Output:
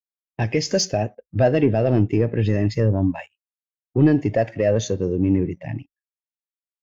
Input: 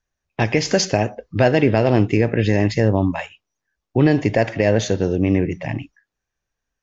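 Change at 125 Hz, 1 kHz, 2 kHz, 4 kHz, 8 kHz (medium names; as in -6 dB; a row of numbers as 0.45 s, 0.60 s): -1.5 dB, -5.5 dB, -8.0 dB, -3.0 dB, no reading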